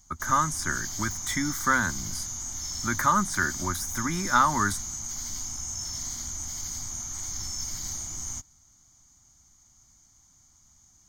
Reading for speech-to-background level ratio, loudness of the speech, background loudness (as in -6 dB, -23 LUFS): 5.5 dB, -27.0 LUFS, -32.5 LUFS